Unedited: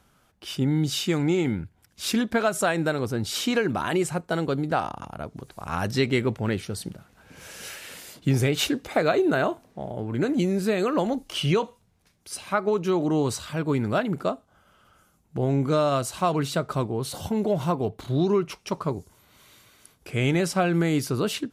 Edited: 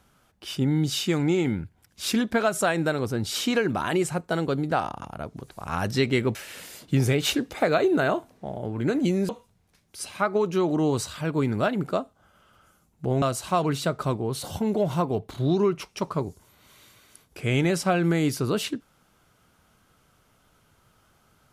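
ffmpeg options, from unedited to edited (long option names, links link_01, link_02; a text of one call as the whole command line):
ffmpeg -i in.wav -filter_complex "[0:a]asplit=4[link_01][link_02][link_03][link_04];[link_01]atrim=end=6.352[link_05];[link_02]atrim=start=7.688:end=10.632[link_06];[link_03]atrim=start=11.608:end=15.542[link_07];[link_04]atrim=start=15.918[link_08];[link_05][link_06]acrossfade=duration=0.004:curve1=hsin:curve2=hsin[link_09];[link_09][link_07]acrossfade=duration=0.004:curve1=hsin:curve2=hsin[link_10];[link_10][link_08]acrossfade=duration=0.004:curve1=hsin:curve2=hsin" out.wav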